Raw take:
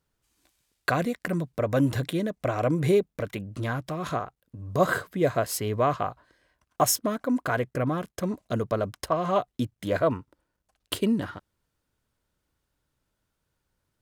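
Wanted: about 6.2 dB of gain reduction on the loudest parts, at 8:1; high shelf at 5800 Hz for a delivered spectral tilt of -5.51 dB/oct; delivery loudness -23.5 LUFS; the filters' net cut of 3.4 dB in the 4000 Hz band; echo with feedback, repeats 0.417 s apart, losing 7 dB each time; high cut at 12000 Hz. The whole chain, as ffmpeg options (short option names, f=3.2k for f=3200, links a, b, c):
-af "lowpass=12k,equalizer=f=4k:t=o:g=-8,highshelf=f=5.8k:g=6,acompressor=threshold=-23dB:ratio=8,aecho=1:1:417|834|1251|1668|2085:0.447|0.201|0.0905|0.0407|0.0183,volume=6.5dB"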